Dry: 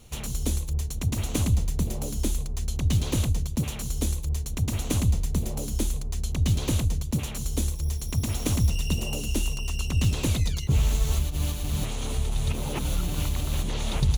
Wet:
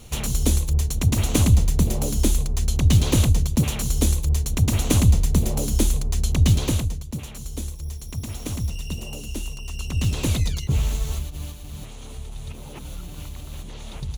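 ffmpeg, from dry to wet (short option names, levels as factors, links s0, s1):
-af "volume=5.01,afade=t=out:st=6.43:d=0.56:silence=0.281838,afade=t=in:st=9.63:d=0.72:silence=0.446684,afade=t=out:st=10.35:d=1.24:silence=0.266073"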